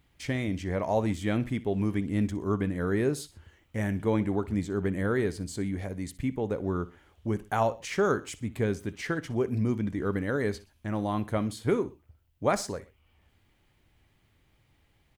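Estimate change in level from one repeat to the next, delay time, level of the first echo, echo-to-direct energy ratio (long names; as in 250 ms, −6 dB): −7.5 dB, 62 ms, −18.0 dB, −17.5 dB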